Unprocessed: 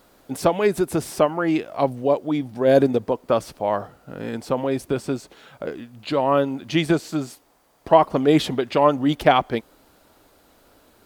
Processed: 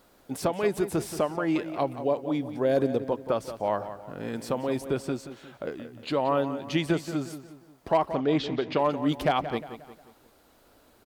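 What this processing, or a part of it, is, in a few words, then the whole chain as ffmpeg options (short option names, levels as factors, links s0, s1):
clipper into limiter: -filter_complex "[0:a]asoftclip=type=hard:threshold=0.531,alimiter=limit=0.316:level=0:latency=1:release=364,asplit=2[s0][s1];[s1]adelay=178,lowpass=f=4400:p=1,volume=0.266,asplit=2[s2][s3];[s3]adelay=178,lowpass=f=4400:p=1,volume=0.43,asplit=2[s4][s5];[s5]adelay=178,lowpass=f=4400:p=1,volume=0.43,asplit=2[s6][s7];[s7]adelay=178,lowpass=f=4400:p=1,volume=0.43[s8];[s0][s2][s4][s6][s8]amix=inputs=5:normalize=0,asettb=1/sr,asplit=3[s9][s10][s11];[s9]atrim=end=4.354[s12];[s10]atrim=start=4.35:end=4.79,asetpts=PTS-STARTPTS,afade=t=in:d=0.004:c=qsin,afade=t=out:st=0.436:d=0.004:c=qsin,highshelf=f=4600:g=5.5[s13];[s11]atrim=start=4.786[s14];[s12][s13]acrossfade=d=0.004:c1=hsin:c2=qsin[s15];[s15][s14]acrossfade=d=0.004:c1=qsin:c2=hsin,asettb=1/sr,asplit=3[s16][s17][s18];[s16]atrim=end=8.164[s19];[s17]atrim=start=8.16:end=8.79,asetpts=PTS-STARTPTS,afade=t=in:d=0.004:c=qsin,afade=t=out:st=0.626:d=0.004:c=qsin,lowpass=f=5600:w=0.5412,lowpass=f=5600:w=1.3066[s20];[s18]atrim=start=8.786[s21];[s19][s20]acrossfade=d=0.004:c1=hsin:c2=qsin[s22];[s22][s21]acrossfade=d=0.004:c1=qsin:c2=hsin,volume=0.596"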